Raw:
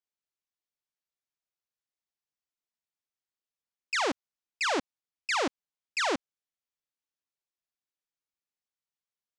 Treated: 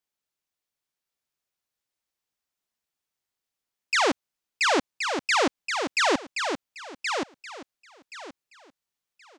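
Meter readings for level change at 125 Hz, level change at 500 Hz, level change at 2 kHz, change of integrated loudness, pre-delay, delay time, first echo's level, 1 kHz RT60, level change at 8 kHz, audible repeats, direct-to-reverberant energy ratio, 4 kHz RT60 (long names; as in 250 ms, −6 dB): +7.0 dB, +7.0 dB, +7.0 dB, +5.0 dB, no reverb audible, 1,075 ms, −6.0 dB, no reverb audible, +7.0 dB, 3, no reverb audible, no reverb audible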